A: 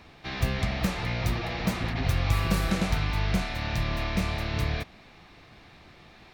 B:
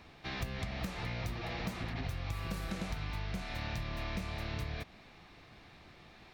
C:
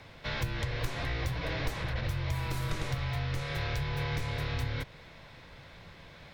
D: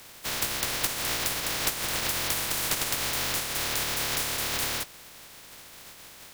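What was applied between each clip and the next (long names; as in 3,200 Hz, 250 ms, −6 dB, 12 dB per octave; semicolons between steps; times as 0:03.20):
downward compressor, threshold −30 dBFS, peak gain reduction 11.5 dB; level −4.5 dB
frequency shifter −180 Hz; level +5.5 dB
compressing power law on the bin magnitudes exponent 0.15; level +3.5 dB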